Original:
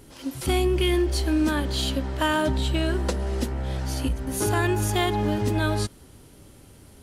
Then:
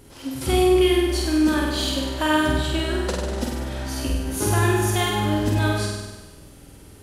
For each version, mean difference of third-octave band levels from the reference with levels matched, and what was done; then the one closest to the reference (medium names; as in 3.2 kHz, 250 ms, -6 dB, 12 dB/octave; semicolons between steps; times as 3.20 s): 4.0 dB: flutter echo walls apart 8.4 m, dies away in 1.2 s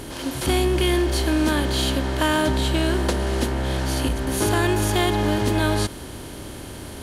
5.5 dB: spectral levelling over time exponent 0.6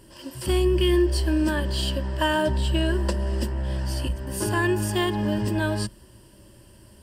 3.0 dB: rippled EQ curve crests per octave 1.3, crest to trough 11 dB; trim -2.5 dB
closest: third